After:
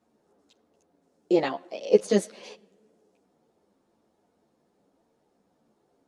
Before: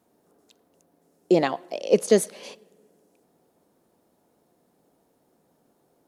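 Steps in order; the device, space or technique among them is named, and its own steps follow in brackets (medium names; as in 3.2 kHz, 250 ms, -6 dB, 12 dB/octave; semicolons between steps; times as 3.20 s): string-machine ensemble chorus (three-phase chorus; low-pass 6.8 kHz 12 dB/octave)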